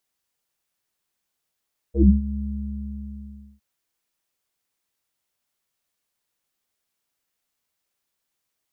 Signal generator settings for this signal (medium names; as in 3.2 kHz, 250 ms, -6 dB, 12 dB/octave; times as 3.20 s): synth note square C#2 24 dB/octave, low-pass 190 Hz, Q 7.2, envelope 1.5 oct, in 0.15 s, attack 101 ms, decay 0.17 s, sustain -15 dB, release 1.23 s, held 0.43 s